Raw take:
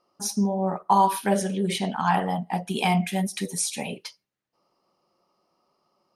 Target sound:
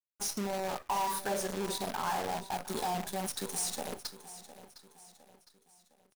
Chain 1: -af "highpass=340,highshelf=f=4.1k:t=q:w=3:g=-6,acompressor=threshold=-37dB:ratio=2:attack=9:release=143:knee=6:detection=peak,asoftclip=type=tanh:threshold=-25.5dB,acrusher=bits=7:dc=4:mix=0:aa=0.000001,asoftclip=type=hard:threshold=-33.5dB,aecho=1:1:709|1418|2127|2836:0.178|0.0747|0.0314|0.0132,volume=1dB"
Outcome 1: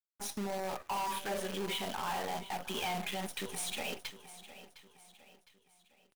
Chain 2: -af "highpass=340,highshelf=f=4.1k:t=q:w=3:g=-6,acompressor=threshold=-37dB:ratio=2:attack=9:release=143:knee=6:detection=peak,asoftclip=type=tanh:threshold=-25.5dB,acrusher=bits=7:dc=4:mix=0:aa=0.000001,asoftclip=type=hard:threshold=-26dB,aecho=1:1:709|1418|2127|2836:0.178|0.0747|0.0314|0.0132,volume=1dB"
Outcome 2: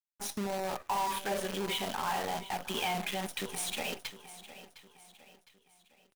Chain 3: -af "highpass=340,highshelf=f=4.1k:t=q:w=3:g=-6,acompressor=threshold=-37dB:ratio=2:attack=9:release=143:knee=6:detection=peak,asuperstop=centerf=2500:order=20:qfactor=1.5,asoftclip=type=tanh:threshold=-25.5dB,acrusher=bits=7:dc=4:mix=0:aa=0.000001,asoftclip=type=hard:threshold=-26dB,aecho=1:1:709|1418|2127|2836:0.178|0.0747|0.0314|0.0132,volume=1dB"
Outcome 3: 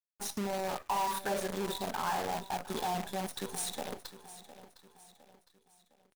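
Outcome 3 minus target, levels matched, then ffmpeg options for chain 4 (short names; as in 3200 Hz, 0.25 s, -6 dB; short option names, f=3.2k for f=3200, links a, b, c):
8000 Hz band -3.5 dB
-af "highpass=340,acompressor=threshold=-37dB:ratio=2:attack=9:release=143:knee=6:detection=peak,asuperstop=centerf=2500:order=20:qfactor=1.5,asoftclip=type=tanh:threshold=-25.5dB,acrusher=bits=7:dc=4:mix=0:aa=0.000001,asoftclip=type=hard:threshold=-26dB,aecho=1:1:709|1418|2127|2836:0.178|0.0747|0.0314|0.0132,volume=1dB"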